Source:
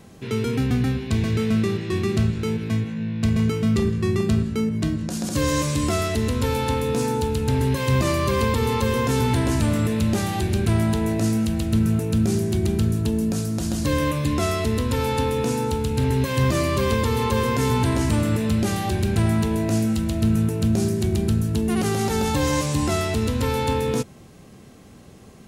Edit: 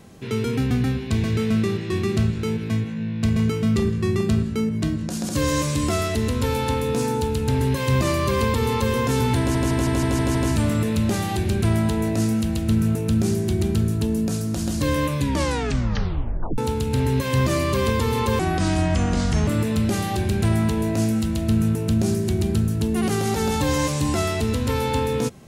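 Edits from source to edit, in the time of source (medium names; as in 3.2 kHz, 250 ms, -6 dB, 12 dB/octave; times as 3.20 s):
9.39 s: stutter 0.16 s, 7 plays
14.22 s: tape stop 1.40 s
17.43–18.21 s: speed 72%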